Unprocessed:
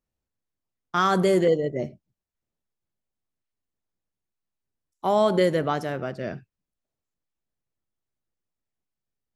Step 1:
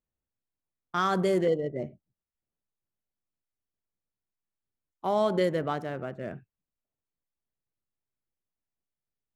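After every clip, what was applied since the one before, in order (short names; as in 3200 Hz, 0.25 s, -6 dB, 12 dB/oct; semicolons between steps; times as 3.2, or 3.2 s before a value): Wiener smoothing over 9 samples; gain -5 dB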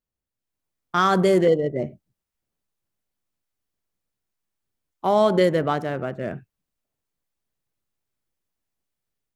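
AGC gain up to 7.5 dB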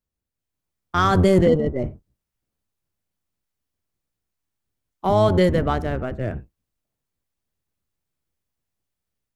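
octaver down 1 oct, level +3 dB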